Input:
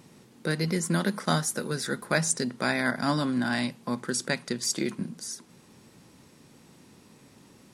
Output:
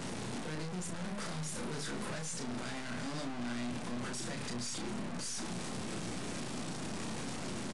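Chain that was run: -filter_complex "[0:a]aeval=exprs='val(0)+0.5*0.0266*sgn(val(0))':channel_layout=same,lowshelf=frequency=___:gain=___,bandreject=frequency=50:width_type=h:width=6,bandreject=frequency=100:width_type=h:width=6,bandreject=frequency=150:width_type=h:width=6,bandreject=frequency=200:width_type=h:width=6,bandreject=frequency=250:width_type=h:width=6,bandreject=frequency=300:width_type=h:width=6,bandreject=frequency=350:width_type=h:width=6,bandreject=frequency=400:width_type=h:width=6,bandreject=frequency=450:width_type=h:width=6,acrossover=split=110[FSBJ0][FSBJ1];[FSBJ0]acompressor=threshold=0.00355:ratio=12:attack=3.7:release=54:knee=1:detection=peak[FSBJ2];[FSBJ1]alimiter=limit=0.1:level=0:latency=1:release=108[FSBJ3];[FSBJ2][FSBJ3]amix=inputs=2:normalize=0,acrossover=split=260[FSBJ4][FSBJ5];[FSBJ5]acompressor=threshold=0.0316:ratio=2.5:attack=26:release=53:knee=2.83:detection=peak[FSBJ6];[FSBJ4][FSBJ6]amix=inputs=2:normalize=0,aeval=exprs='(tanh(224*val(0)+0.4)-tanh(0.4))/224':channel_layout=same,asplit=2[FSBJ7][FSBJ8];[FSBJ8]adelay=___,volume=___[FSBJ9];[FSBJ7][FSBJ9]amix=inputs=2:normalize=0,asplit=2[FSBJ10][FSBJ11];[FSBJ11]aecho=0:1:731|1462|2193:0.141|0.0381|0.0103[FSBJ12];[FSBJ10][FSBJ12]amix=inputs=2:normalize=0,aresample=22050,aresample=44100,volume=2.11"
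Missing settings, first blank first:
320, 7.5, 33, 0.562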